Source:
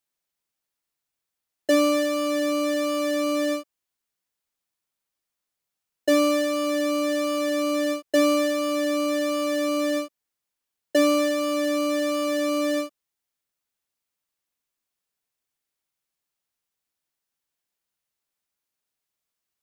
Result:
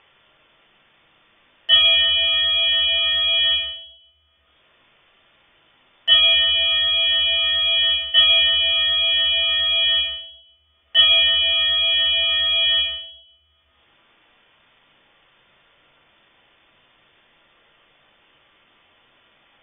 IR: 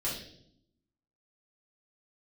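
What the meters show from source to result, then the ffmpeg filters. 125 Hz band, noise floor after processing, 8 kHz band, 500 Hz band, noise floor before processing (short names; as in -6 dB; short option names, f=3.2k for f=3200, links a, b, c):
n/a, -61 dBFS, under -40 dB, -13.5 dB, -85 dBFS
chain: -filter_complex "[0:a]lowpass=f=3.1k:t=q:w=0.5098,lowpass=f=3.1k:t=q:w=0.6013,lowpass=f=3.1k:t=q:w=0.9,lowpass=f=3.1k:t=q:w=2.563,afreqshift=-3600[a];[1:a]atrim=start_sample=2205[b];[a][b]afir=irnorm=-1:irlink=0,acompressor=mode=upward:threshold=-34dB:ratio=2.5"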